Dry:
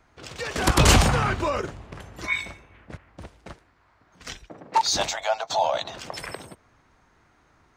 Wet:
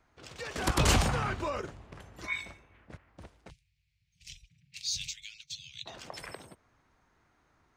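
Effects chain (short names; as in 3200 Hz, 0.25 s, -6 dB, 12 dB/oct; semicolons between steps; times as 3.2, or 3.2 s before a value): 3.5–5.86 Chebyshev band-stop 150–2400 Hz, order 4; gain -8.5 dB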